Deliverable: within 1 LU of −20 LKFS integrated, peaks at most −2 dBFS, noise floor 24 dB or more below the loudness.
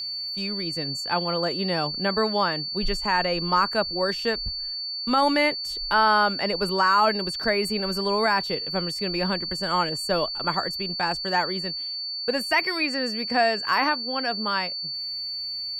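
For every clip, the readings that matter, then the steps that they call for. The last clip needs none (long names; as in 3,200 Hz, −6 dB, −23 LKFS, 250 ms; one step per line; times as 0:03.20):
interfering tone 4,500 Hz; level of the tone −29 dBFS; integrated loudness −24.0 LKFS; sample peak −10.0 dBFS; target loudness −20.0 LKFS
→ notch filter 4,500 Hz, Q 30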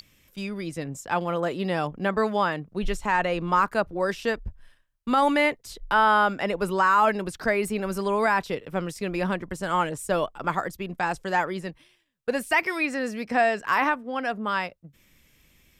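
interfering tone none found; integrated loudness −25.5 LKFS; sample peak −11.0 dBFS; target loudness −20.0 LKFS
→ level +5.5 dB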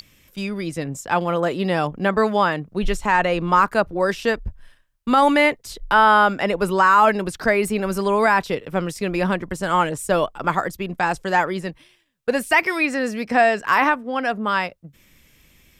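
integrated loudness −20.0 LKFS; sample peak −5.5 dBFS; background noise floor −57 dBFS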